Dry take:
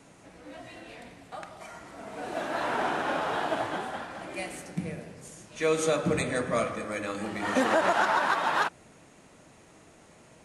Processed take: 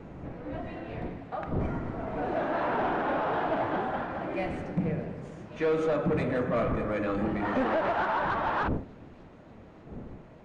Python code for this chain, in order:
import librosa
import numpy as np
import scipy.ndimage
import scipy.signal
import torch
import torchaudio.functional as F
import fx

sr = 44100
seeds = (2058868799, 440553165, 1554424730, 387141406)

p1 = fx.dmg_wind(x, sr, seeds[0], corner_hz=300.0, level_db=-45.0)
p2 = fx.high_shelf(p1, sr, hz=3300.0, db=-9.5)
p3 = fx.rider(p2, sr, range_db=5, speed_s=0.5)
p4 = p2 + (p3 * 10.0 ** (0.0 / 20.0))
p5 = 10.0 ** (-20.5 / 20.0) * np.tanh(p4 / 10.0 ** (-20.5 / 20.0))
p6 = fx.spacing_loss(p5, sr, db_at_10k=27)
y = fx.echo_wet_highpass(p6, sr, ms=591, feedback_pct=71, hz=5000.0, wet_db=-18.0)